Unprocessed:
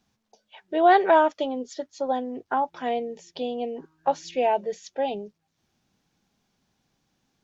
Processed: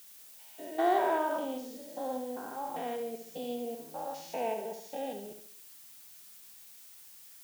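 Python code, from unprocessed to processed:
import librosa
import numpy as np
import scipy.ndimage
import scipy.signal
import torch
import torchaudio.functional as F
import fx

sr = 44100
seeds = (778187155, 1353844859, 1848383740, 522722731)

p1 = fx.spec_steps(x, sr, hold_ms=200)
p2 = fx.quant_float(p1, sr, bits=2)
p3 = p1 + F.gain(torch.from_numpy(p2), -10.0).numpy()
p4 = fx.dmg_noise_colour(p3, sr, seeds[0], colour='blue', level_db=-45.0)
p5 = fx.echo_feedback(p4, sr, ms=70, feedback_pct=45, wet_db=-7.5)
y = F.gain(torch.from_numpy(p5), -9.0).numpy()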